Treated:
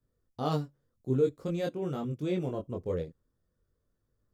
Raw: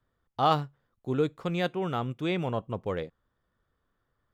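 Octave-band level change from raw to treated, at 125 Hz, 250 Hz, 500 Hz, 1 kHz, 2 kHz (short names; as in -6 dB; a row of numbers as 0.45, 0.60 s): -1.0, -1.5, -0.5, -11.0, -11.0 dB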